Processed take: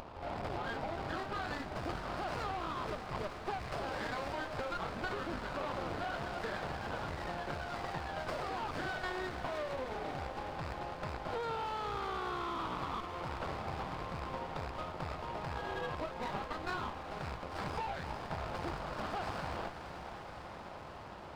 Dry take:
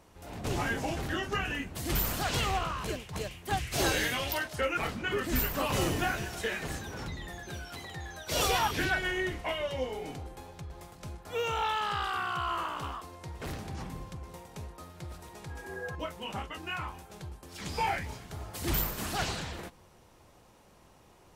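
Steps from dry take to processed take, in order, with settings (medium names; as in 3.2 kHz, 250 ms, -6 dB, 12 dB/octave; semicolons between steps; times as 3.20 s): rattle on loud lows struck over -40 dBFS, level -35 dBFS; high-pass 48 Hz; high-order bell 890 Hz +9 dB; upward compressor, threshold -46 dBFS; peak limiter -21.5 dBFS, peak gain reduction 11 dB; compression 6:1, threshold -38 dBFS, peak gain reduction 12 dB; half-wave rectifier; on a send: echo that smears into a reverb 515 ms, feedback 75%, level -9 dB; on the sum: resampled via 11.025 kHz; sliding maximum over 9 samples; trim +5 dB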